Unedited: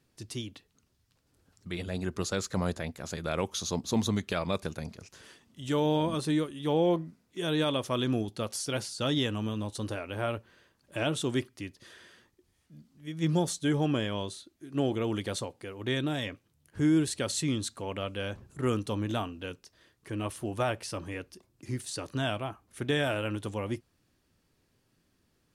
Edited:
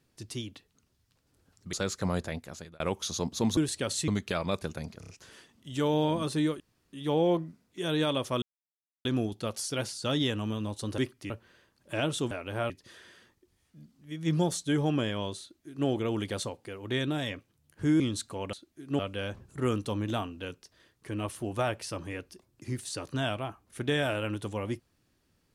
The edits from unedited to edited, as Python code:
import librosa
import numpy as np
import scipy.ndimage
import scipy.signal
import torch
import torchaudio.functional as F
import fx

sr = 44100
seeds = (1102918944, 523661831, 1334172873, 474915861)

y = fx.edit(x, sr, fx.cut(start_s=1.73, length_s=0.52),
    fx.fade_out_span(start_s=2.89, length_s=0.43),
    fx.stutter(start_s=5.01, slice_s=0.03, count=4),
    fx.insert_room_tone(at_s=6.52, length_s=0.33),
    fx.insert_silence(at_s=8.01, length_s=0.63),
    fx.swap(start_s=9.94, length_s=0.39, other_s=11.34, other_length_s=0.32),
    fx.duplicate(start_s=14.37, length_s=0.46, to_s=18.0),
    fx.move(start_s=16.96, length_s=0.51, to_s=4.09), tone=tone)